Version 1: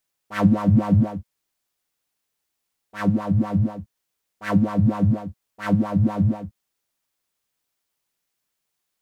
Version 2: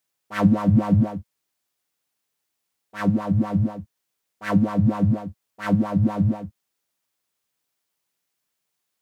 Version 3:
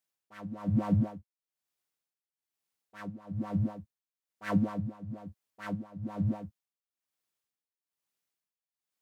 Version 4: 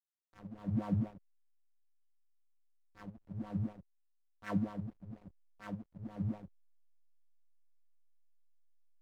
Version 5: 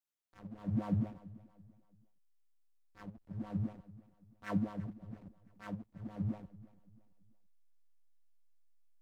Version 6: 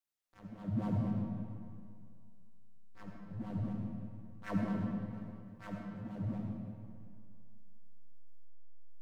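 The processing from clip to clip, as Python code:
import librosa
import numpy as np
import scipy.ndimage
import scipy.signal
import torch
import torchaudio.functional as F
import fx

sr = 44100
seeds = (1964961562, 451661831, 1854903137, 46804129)

y1 = scipy.signal.sosfilt(scipy.signal.butter(2, 80.0, 'highpass', fs=sr, output='sos'), x)
y2 = y1 * (1.0 - 0.85 / 2.0 + 0.85 / 2.0 * np.cos(2.0 * np.pi * 1.1 * (np.arange(len(y1)) / sr)))
y2 = y2 * librosa.db_to_amplitude(-8.0)
y3 = fx.backlash(y2, sr, play_db=-38.5)
y3 = y3 * librosa.db_to_amplitude(-6.0)
y4 = fx.echo_feedback(y3, sr, ms=336, feedback_pct=37, wet_db=-19.0)
y5 = fx.rev_freeverb(y4, sr, rt60_s=2.2, hf_ratio=0.7, predelay_ms=30, drr_db=0.5)
y5 = y5 * librosa.db_to_amplitude(-1.0)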